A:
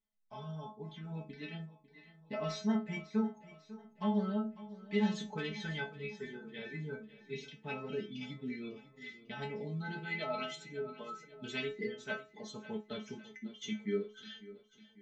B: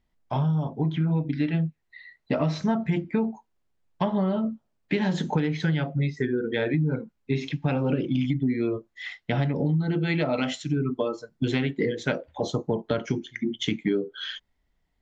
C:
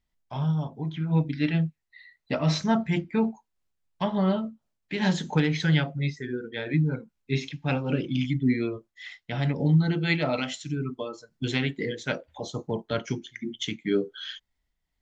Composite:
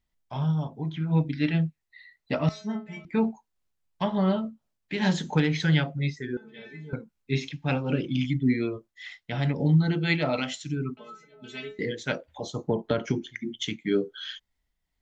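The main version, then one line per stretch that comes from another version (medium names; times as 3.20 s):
C
2.49–3.05 s: from A
6.37–6.93 s: from A
10.97–11.79 s: from A
12.64–13.36 s: from B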